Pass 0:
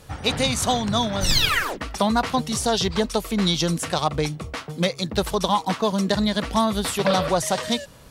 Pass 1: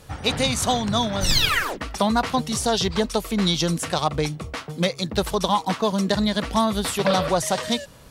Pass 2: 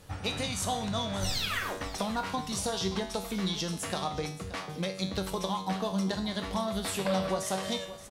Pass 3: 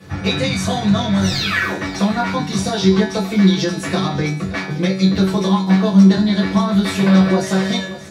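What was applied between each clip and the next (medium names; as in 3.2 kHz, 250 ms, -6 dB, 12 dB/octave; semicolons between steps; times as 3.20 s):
no audible change
compression 3:1, threshold -24 dBFS, peak gain reduction 7.5 dB; feedback comb 95 Hz, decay 0.58 s, harmonics all, mix 80%; feedback delay 575 ms, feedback 41%, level -15.5 dB; trim +4 dB
reverberation, pre-delay 3 ms, DRR -5.5 dB; trim -2 dB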